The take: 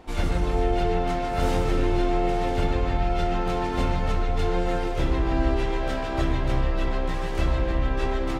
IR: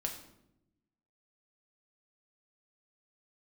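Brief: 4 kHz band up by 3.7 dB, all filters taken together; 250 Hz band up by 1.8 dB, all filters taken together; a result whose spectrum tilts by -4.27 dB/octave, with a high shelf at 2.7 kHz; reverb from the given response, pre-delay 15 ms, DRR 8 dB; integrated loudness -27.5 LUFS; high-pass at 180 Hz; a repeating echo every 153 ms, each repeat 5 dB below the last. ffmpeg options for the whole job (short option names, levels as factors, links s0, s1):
-filter_complex "[0:a]highpass=180,equalizer=f=250:t=o:g=4,highshelf=f=2700:g=-3.5,equalizer=f=4000:t=o:g=7.5,aecho=1:1:153|306|459|612|765|918|1071:0.562|0.315|0.176|0.0988|0.0553|0.031|0.0173,asplit=2[s0][s1];[1:a]atrim=start_sample=2205,adelay=15[s2];[s1][s2]afir=irnorm=-1:irlink=0,volume=0.355[s3];[s0][s3]amix=inputs=2:normalize=0,volume=0.75"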